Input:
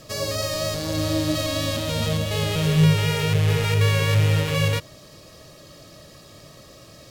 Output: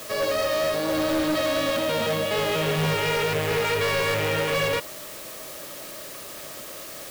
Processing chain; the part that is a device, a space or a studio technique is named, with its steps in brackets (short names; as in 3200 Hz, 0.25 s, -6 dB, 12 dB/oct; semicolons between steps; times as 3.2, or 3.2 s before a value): aircraft radio (BPF 330–2700 Hz; hard clip -27 dBFS, distortion -10 dB; white noise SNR 14 dB); gain +6.5 dB